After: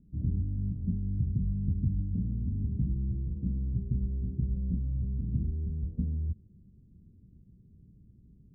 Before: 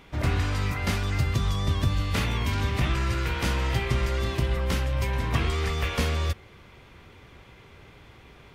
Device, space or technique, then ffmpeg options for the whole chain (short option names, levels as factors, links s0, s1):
the neighbour's flat through the wall: -af "lowpass=f=250:w=0.5412,lowpass=f=250:w=1.3066,equalizer=f=190:t=o:w=0.48:g=7,volume=0.562"